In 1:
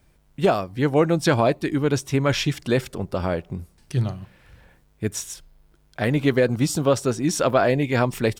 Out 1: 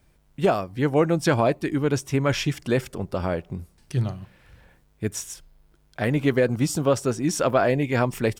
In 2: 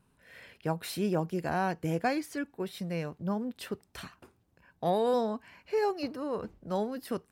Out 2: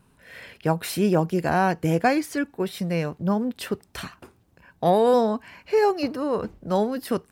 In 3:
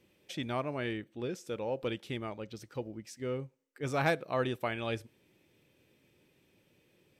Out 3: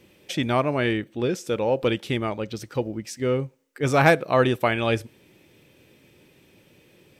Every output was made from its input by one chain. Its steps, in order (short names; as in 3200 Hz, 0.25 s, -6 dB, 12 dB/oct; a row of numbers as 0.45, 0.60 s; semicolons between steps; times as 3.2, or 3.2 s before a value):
dynamic EQ 3900 Hz, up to -5 dB, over -49 dBFS, Q 3.3; match loudness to -24 LUFS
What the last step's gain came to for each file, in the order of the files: -1.5, +9.0, +12.5 dB